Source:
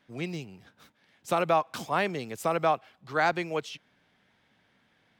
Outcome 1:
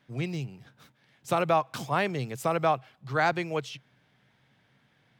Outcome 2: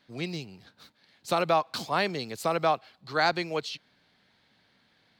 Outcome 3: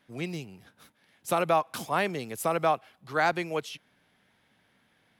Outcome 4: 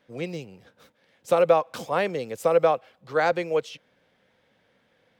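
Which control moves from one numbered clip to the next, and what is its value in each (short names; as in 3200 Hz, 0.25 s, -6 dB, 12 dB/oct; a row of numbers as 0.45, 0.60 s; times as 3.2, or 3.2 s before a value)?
bell, frequency: 130, 4300, 11000, 510 Hz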